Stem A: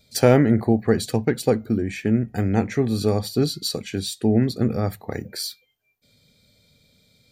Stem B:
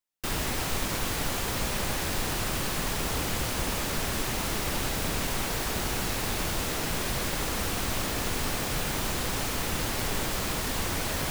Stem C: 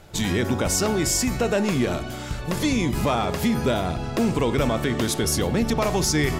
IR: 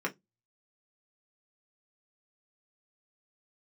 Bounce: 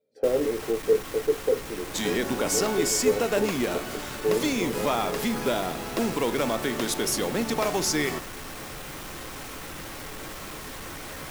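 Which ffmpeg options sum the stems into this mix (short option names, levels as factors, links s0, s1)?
-filter_complex "[0:a]bandpass=f=460:t=q:w=4.7:csg=0,volume=0.531,asplit=2[s0][s1];[s1]volume=0.531[s2];[1:a]asoftclip=type=hard:threshold=0.0447,volume=0.355,asplit=2[s3][s4];[s4]volume=0.376[s5];[2:a]highpass=240,acrusher=bits=4:mode=log:mix=0:aa=0.000001,adelay=1800,volume=0.75[s6];[3:a]atrim=start_sample=2205[s7];[s2][s5]amix=inputs=2:normalize=0[s8];[s8][s7]afir=irnorm=-1:irlink=0[s9];[s0][s3][s6][s9]amix=inputs=4:normalize=0"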